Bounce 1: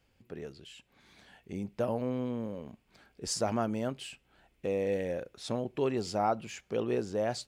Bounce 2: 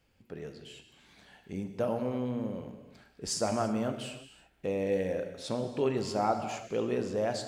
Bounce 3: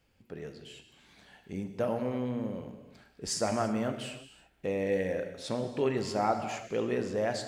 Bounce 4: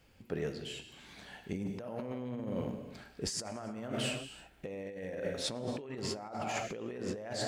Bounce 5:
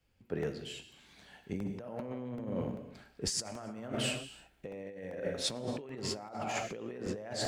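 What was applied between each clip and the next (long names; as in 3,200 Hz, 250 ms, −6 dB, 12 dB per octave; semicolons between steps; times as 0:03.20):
convolution reverb, pre-delay 3 ms, DRR 6 dB
dynamic equaliser 1,900 Hz, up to +6 dB, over −57 dBFS, Q 2.8
compressor whose output falls as the input rises −39 dBFS, ratio −1
regular buffer underruns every 0.39 s, samples 64, repeat, from 0:00.43; multiband upward and downward expander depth 40%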